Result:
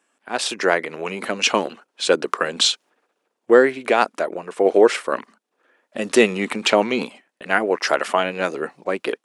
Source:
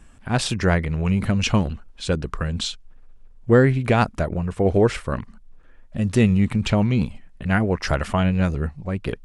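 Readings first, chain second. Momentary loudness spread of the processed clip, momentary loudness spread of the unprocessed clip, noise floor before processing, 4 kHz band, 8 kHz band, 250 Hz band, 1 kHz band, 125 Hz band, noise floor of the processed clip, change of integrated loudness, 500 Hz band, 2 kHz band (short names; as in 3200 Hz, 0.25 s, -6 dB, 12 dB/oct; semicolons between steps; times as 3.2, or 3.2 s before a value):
13 LU, 11 LU, -47 dBFS, +7.5 dB, +6.5 dB, -4.0 dB, +5.0 dB, under -15 dB, -77 dBFS, +1.5 dB, +5.0 dB, +5.5 dB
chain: HPF 330 Hz 24 dB/oct; AGC gain up to 14.5 dB; gate -41 dBFS, range -8 dB; gain -1 dB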